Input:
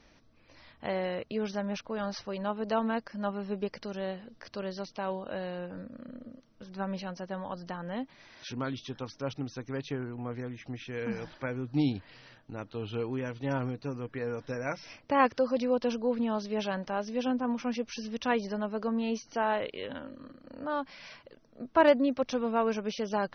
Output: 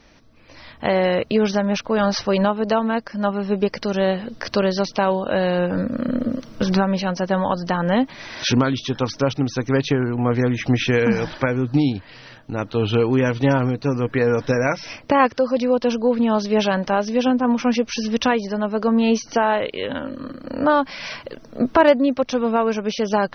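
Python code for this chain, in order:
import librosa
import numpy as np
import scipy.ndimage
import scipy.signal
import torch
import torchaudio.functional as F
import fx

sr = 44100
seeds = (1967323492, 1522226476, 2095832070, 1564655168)

y = fx.recorder_agc(x, sr, target_db=-16.5, rise_db_per_s=8.4, max_gain_db=30)
y = F.gain(torch.from_numpy(y), 8.0).numpy()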